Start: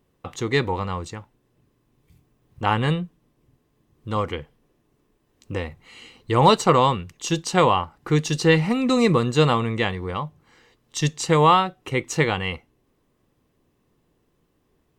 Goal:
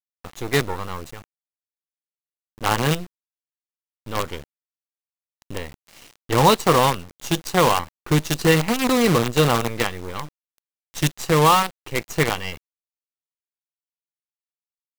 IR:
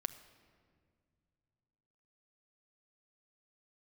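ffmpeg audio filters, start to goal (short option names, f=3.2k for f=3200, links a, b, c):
-af "acrusher=bits=4:dc=4:mix=0:aa=0.000001"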